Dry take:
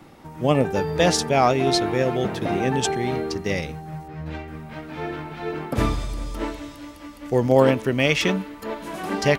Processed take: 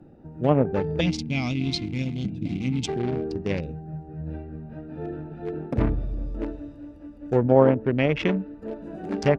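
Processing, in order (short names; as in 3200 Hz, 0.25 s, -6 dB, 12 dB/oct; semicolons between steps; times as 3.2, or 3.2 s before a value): Wiener smoothing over 41 samples; spectral gain 1–2.88, 330–2000 Hz -19 dB; treble ducked by the level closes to 1300 Hz, closed at -15.5 dBFS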